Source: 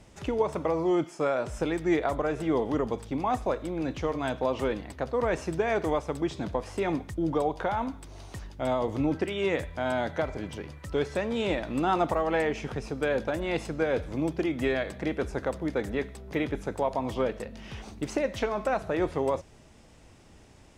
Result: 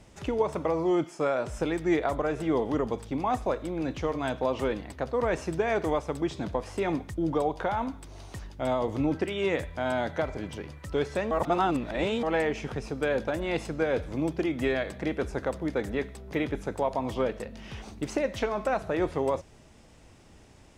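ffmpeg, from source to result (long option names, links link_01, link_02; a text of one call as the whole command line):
ffmpeg -i in.wav -filter_complex "[0:a]asplit=3[link_01][link_02][link_03];[link_01]atrim=end=11.312[link_04];[link_02]atrim=start=11.308:end=12.232,asetpts=PTS-STARTPTS,areverse[link_05];[link_03]atrim=start=12.228[link_06];[link_04][link_05]acrossfade=duration=0.004:curve1=hsin:curve2=hsin[link_07];[link_07][link_06]acrossfade=duration=0.004:curve1=hsin:curve2=hsin" out.wav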